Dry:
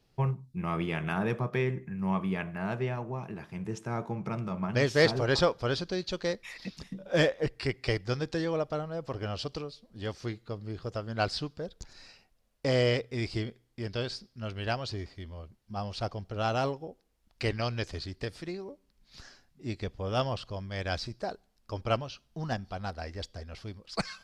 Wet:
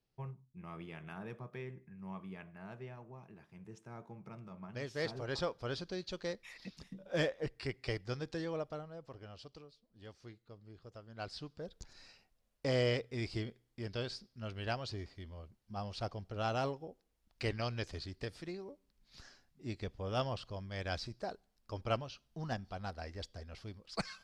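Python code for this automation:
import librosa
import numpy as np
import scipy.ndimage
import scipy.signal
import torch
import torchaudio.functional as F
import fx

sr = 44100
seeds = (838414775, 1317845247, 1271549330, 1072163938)

y = fx.gain(x, sr, db=fx.line((4.83, -16.0), (5.84, -8.5), (8.6, -8.5), (9.28, -17.0), (11.11, -17.0), (11.71, -6.0)))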